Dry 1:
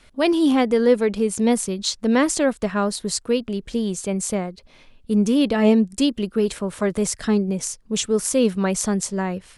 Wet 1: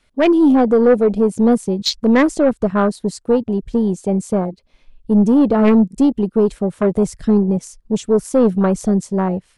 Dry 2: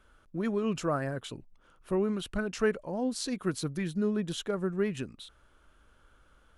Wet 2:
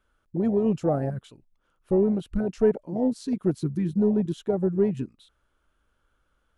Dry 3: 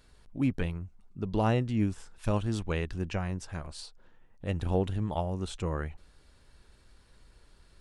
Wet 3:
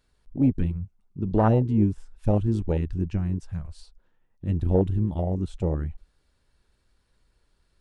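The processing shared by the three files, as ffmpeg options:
-af "afwtdn=0.0501,aeval=exprs='0.596*(cos(1*acos(clip(val(0)/0.596,-1,1)))-cos(1*PI/2))+0.0422*(cos(4*acos(clip(val(0)/0.596,-1,1)))-cos(4*PI/2))+0.106*(cos(5*acos(clip(val(0)/0.596,-1,1)))-cos(5*PI/2))+0.0335*(cos(6*acos(clip(val(0)/0.596,-1,1)))-cos(6*PI/2))':c=same,volume=2dB"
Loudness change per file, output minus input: +5.0, +6.5, +6.5 LU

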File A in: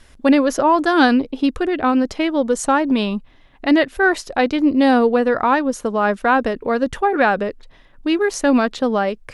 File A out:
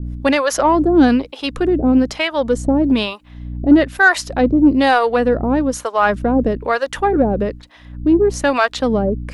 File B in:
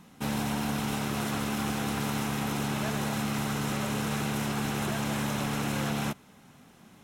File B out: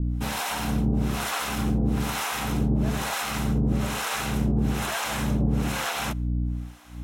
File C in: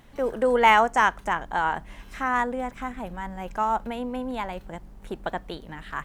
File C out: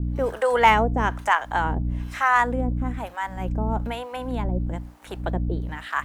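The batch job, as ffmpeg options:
-filter_complex "[0:a]aeval=exprs='val(0)+0.0282*(sin(2*PI*60*n/s)+sin(2*PI*2*60*n/s)/2+sin(2*PI*3*60*n/s)/3+sin(2*PI*4*60*n/s)/4+sin(2*PI*5*60*n/s)/5)':c=same,acrossover=split=550[a][b];[a]aeval=exprs='val(0)*(1-1/2+1/2*cos(2*PI*1.1*n/s))':c=same[c];[b]aeval=exprs='val(0)*(1-1/2-1/2*cos(2*PI*1.1*n/s))':c=same[d];[c][d]amix=inputs=2:normalize=0,aeval=exprs='0.422*(cos(1*acos(clip(val(0)/0.422,-1,1)))-cos(1*PI/2))+0.0119*(cos(5*acos(clip(val(0)/0.422,-1,1)))-cos(5*PI/2))':c=same,volume=6.5dB"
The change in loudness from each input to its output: +1.5, +4.0, +1.5 LU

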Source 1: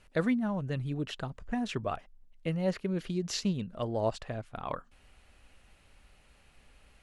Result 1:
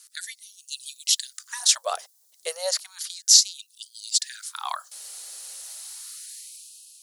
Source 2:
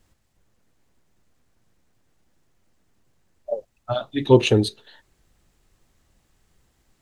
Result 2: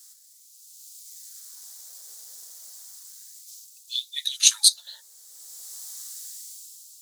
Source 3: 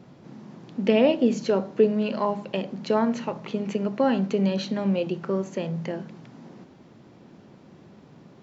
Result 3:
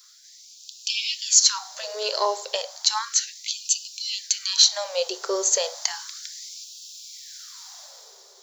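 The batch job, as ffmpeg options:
-filter_complex "[0:a]acrossover=split=190|790|1600[a][b][c][d];[a]acompressor=threshold=-44dB:ratio=16[e];[e][b][c][d]amix=inputs=4:normalize=0,aexciter=amount=15.5:drive=4.3:freq=4k,dynaudnorm=f=170:g=9:m=11.5dB,lowshelf=f=310:g=-8.5,afftfilt=real='re*gte(b*sr/1024,350*pow(2500/350,0.5+0.5*sin(2*PI*0.33*pts/sr)))':imag='im*gte(b*sr/1024,350*pow(2500/350,0.5+0.5*sin(2*PI*0.33*pts/sr)))':win_size=1024:overlap=0.75,volume=-1dB"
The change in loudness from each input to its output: +11.5, -1.0, +3.0 LU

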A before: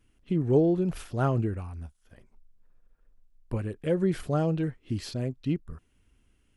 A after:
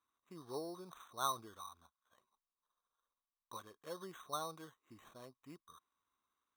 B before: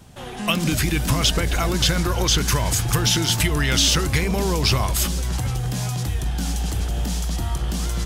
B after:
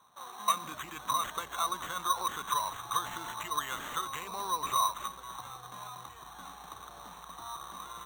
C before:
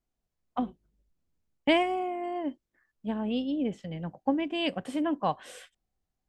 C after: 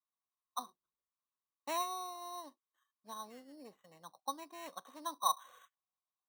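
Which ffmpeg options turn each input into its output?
-af "bandpass=f=1.1k:t=q:w=10:csg=0,acrusher=samples=9:mix=1:aa=0.000001,volume=5.5dB"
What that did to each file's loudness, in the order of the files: -17.0, -13.0, -10.0 LU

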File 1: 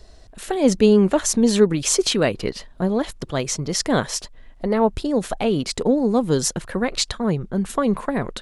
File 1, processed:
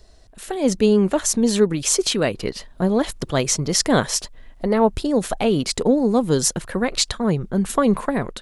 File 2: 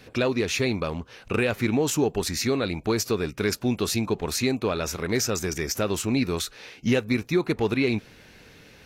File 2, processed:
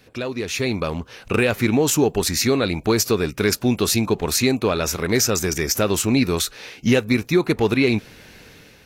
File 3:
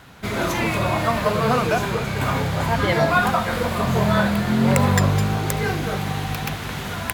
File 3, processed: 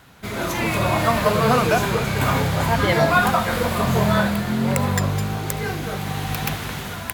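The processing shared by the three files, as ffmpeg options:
-af "dynaudnorm=f=260:g=5:m=11dB,crystalizer=i=0.5:c=0,volume=-4dB"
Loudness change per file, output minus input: +0.5, +5.5, +0.5 LU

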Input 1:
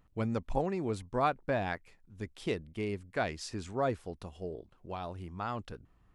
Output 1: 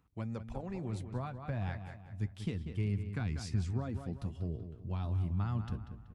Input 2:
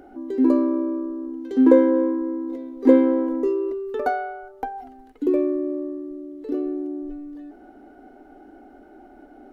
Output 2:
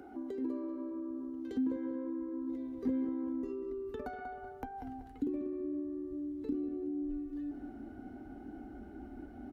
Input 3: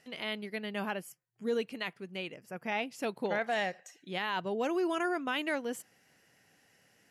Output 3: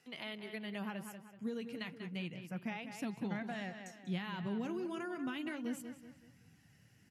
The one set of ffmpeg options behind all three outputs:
-filter_complex "[0:a]flanger=delay=0.8:depth=8.1:regen=-58:speed=0.31:shape=sinusoidal,acompressor=threshold=-36dB:ratio=2.5,highpass=65,asplit=2[a][b];[b]adelay=190,lowpass=f=3.9k:p=1,volume=-10dB,asplit=2[c][d];[d]adelay=190,lowpass=f=3.9k:p=1,volume=0.4,asplit=2[e][f];[f]adelay=190,lowpass=f=3.9k:p=1,volume=0.4,asplit=2[g][h];[h]adelay=190,lowpass=f=3.9k:p=1,volume=0.4[i];[a][c][e][g][i]amix=inputs=5:normalize=0,asubboost=boost=10.5:cutoff=160,acrossover=split=260[j][k];[k]acompressor=threshold=-41dB:ratio=3[l];[j][l]amix=inputs=2:normalize=0"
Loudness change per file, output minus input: -2.0, -17.5, -7.0 LU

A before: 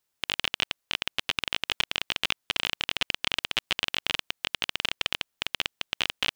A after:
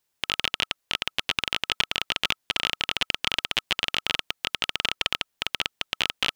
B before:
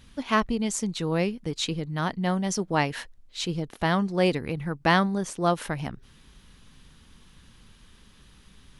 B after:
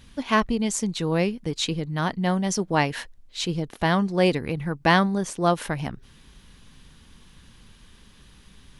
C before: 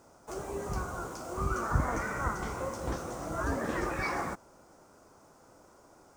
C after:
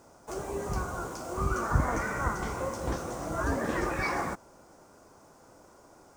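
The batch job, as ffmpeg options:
-af "bandreject=f=1.3k:w=23,volume=2.5dB"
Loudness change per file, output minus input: +2.5, +2.5, +2.5 LU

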